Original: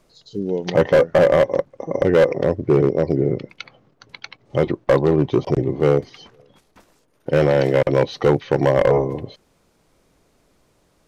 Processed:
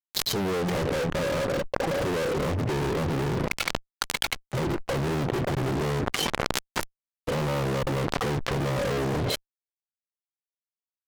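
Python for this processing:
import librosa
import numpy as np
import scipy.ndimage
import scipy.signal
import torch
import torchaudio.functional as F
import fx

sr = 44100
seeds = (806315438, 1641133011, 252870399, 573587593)

y = fx.env_lowpass_down(x, sr, base_hz=390.0, full_db=-15.0)
y = fx.fuzz(y, sr, gain_db=43.0, gate_db=-45.0)
y = fx.env_flatten(y, sr, amount_pct=100)
y = y * librosa.db_to_amplitude(-13.0)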